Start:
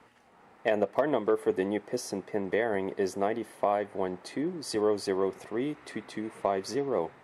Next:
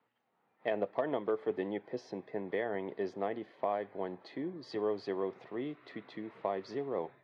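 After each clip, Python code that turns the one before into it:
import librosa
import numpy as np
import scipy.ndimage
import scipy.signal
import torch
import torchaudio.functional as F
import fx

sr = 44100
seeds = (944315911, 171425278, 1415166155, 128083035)

y = scipy.signal.sosfilt(scipy.signal.cheby1(3, 1.0, [110.0, 4000.0], 'bandpass', fs=sr, output='sos'), x)
y = fx.noise_reduce_blind(y, sr, reduce_db=12)
y = y * 10.0 ** (-6.5 / 20.0)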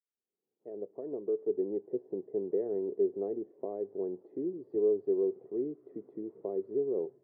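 y = fx.fade_in_head(x, sr, length_s=2.04)
y = fx.lowpass_res(y, sr, hz=400.0, q=5.0)
y = y * 10.0 ** (-5.0 / 20.0)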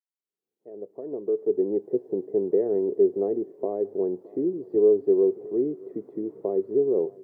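y = fx.fade_in_head(x, sr, length_s=1.81)
y = y + 10.0 ** (-23.0 / 20.0) * np.pad(y, (int(618 * sr / 1000.0), 0))[:len(y)]
y = y * 10.0 ** (9.0 / 20.0)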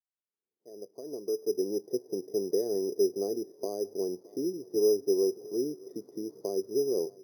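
y = np.repeat(scipy.signal.resample_poly(x, 1, 8), 8)[:len(x)]
y = y * 10.0 ** (-6.0 / 20.0)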